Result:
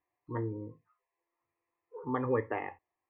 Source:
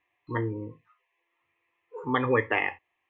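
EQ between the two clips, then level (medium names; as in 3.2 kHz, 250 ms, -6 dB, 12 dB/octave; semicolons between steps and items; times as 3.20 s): low-pass 1.1 kHz 12 dB/octave; -5.0 dB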